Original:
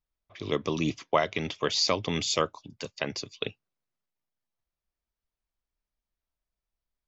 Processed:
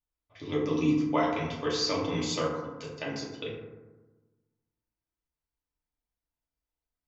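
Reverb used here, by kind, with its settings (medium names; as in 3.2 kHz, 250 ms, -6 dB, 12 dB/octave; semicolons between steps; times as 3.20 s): FDN reverb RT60 1.2 s, low-frequency decay 1.3×, high-frequency decay 0.35×, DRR -6 dB; trim -9.5 dB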